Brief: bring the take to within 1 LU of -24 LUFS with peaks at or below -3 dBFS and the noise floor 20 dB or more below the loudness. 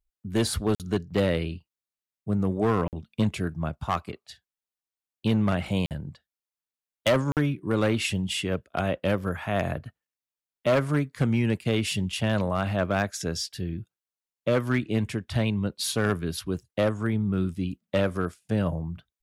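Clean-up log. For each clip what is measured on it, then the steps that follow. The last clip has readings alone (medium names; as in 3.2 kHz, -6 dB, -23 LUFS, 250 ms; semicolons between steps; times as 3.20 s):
clipped samples 1.0%; clipping level -16.5 dBFS; dropouts 4; longest dropout 48 ms; loudness -27.5 LUFS; peak level -16.5 dBFS; loudness target -24.0 LUFS
-> clip repair -16.5 dBFS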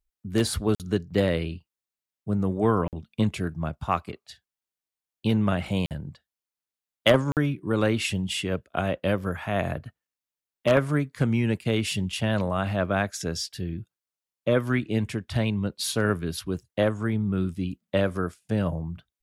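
clipped samples 0.0%; dropouts 4; longest dropout 48 ms
-> interpolate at 0.75/2.88/5.86/7.32 s, 48 ms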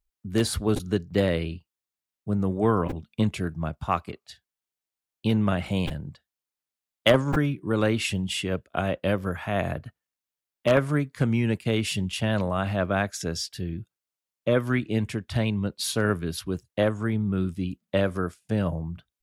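dropouts 0; loudness -26.5 LUFS; peak level -7.5 dBFS; loudness target -24.0 LUFS
-> trim +2.5 dB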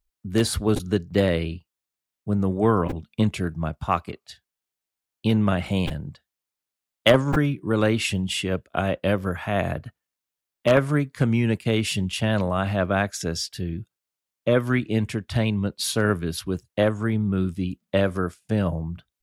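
loudness -24.0 LUFS; peak level -5.0 dBFS; noise floor -87 dBFS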